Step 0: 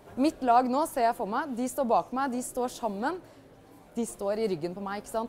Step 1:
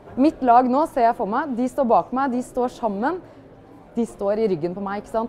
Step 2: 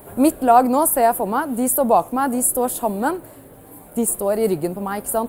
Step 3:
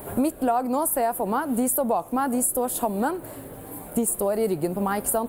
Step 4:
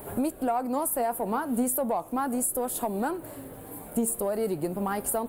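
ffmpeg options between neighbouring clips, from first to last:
-af "lowpass=f=1.6k:p=1,volume=8.5dB"
-af "aexciter=amount=12.9:drive=8.3:freq=8.6k,highshelf=f=4.4k:g=5,volume=1.5dB"
-af "acompressor=threshold=-25dB:ratio=6,volume=4dB"
-filter_complex "[0:a]asplit=2[a][b];[b]asoftclip=type=tanh:threshold=-19.5dB,volume=-5.5dB[c];[a][c]amix=inputs=2:normalize=0,flanger=delay=2.3:depth=2.1:regen=88:speed=0.38:shape=sinusoidal,volume=-2.5dB"

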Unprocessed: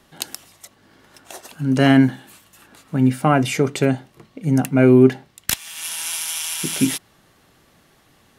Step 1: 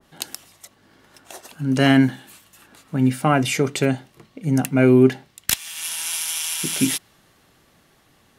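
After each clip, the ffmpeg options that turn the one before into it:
-af "adynamicequalizer=threshold=0.0251:dfrequency=1700:dqfactor=0.7:tfrequency=1700:tqfactor=0.7:attack=5:release=100:ratio=0.375:range=2:mode=boostabove:tftype=highshelf,volume=-2dB"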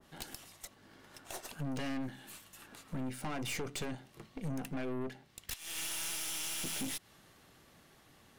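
-af "acompressor=threshold=-26dB:ratio=10,aeval=exprs='(tanh(50.1*val(0)+0.65)-tanh(0.65))/50.1':c=same,volume=-1dB"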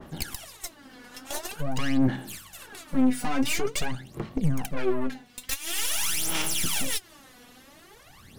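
-af "aphaser=in_gain=1:out_gain=1:delay=4.1:decay=0.76:speed=0.47:type=sinusoidal,volume=7dB"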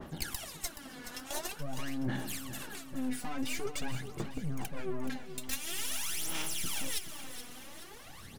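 -af "areverse,acompressor=threshold=-32dB:ratio=6,areverse,aecho=1:1:425|850|1275|1700|2125:0.282|0.138|0.0677|0.0332|0.0162"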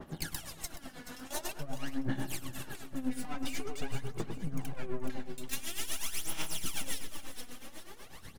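-filter_complex "[0:a]asplit=2[a][b];[b]adelay=100,lowpass=f=1.1k:p=1,volume=-5dB,asplit=2[c][d];[d]adelay=100,lowpass=f=1.1k:p=1,volume=0.52,asplit=2[e][f];[f]adelay=100,lowpass=f=1.1k:p=1,volume=0.52,asplit=2[g][h];[h]adelay=100,lowpass=f=1.1k:p=1,volume=0.52,asplit=2[i][j];[j]adelay=100,lowpass=f=1.1k:p=1,volume=0.52,asplit=2[k][l];[l]adelay=100,lowpass=f=1.1k:p=1,volume=0.52,asplit=2[m][n];[n]adelay=100,lowpass=f=1.1k:p=1,volume=0.52[o];[a][c][e][g][i][k][m][o]amix=inputs=8:normalize=0,tremolo=f=8.1:d=0.73,volume=1dB"

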